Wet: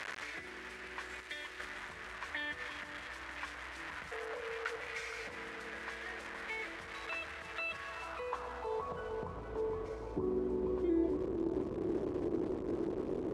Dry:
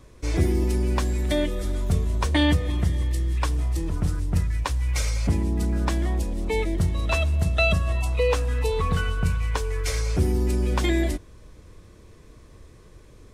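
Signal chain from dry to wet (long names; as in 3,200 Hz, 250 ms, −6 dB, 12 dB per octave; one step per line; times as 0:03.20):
linear delta modulator 64 kbit/s, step −27 dBFS
0:01.20–0:01.60: guitar amp tone stack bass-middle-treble 5-5-5
downward compressor, threshold −22 dBFS, peak gain reduction 7 dB
brickwall limiter −23.5 dBFS, peak gain reduction 10 dB
0:04.11–0:04.76: frequency shifter +400 Hz
band-pass filter sweep 1,800 Hz → 350 Hz, 0:07.78–0:09.52
on a send: bucket-brigade delay 467 ms, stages 4,096, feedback 81%, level −7.5 dB
on the sum: level +4 dB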